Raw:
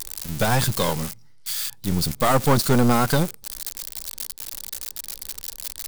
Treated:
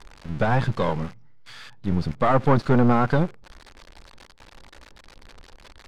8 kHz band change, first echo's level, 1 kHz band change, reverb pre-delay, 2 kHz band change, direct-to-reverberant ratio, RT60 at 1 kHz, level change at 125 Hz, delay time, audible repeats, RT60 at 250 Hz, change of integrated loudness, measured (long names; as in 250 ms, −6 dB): below −25 dB, no echo audible, −0.5 dB, no reverb audible, −2.0 dB, no reverb audible, no reverb audible, 0.0 dB, no echo audible, no echo audible, no reverb audible, +1.0 dB